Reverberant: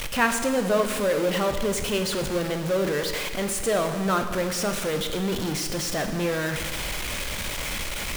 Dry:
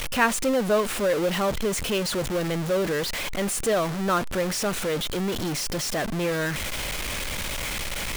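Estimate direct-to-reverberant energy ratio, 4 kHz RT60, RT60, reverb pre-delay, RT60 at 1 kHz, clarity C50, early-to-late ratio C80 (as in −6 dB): 6.5 dB, 1.5 s, 1.6 s, 18 ms, 1.5 s, 8.0 dB, 9.5 dB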